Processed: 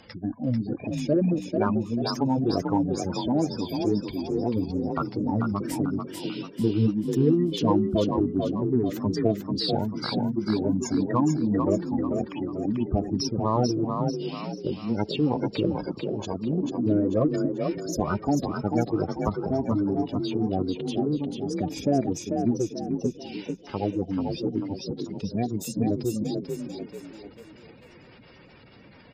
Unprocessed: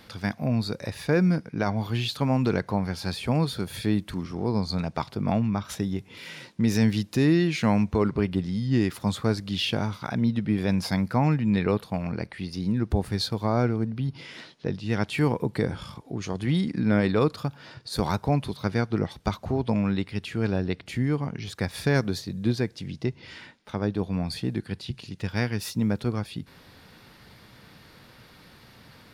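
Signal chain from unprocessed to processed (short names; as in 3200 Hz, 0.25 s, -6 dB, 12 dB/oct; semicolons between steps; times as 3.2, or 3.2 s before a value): spectral gate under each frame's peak -15 dB strong; formant shift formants +6 st; added harmonics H 8 -39 dB, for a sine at -11 dBFS; frequency-shifting echo 0.441 s, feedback 40%, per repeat +34 Hz, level -5 dB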